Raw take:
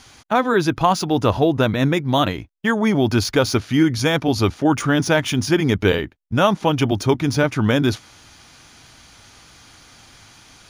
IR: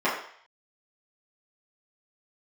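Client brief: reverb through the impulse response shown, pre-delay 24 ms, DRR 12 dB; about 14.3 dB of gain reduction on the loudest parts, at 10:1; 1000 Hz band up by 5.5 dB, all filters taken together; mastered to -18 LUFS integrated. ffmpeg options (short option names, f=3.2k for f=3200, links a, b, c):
-filter_complex "[0:a]equalizer=f=1k:t=o:g=7,acompressor=threshold=-21dB:ratio=10,asplit=2[a][b];[1:a]atrim=start_sample=2205,adelay=24[c];[b][c]afir=irnorm=-1:irlink=0,volume=-27.5dB[d];[a][d]amix=inputs=2:normalize=0,volume=8dB"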